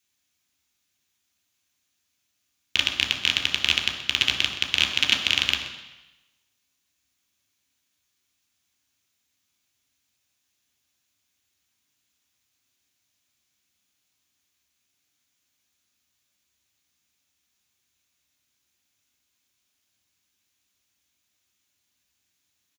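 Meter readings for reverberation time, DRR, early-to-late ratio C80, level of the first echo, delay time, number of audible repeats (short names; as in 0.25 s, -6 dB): 1.0 s, 2.0 dB, 8.5 dB, -14.5 dB, 0.127 s, 1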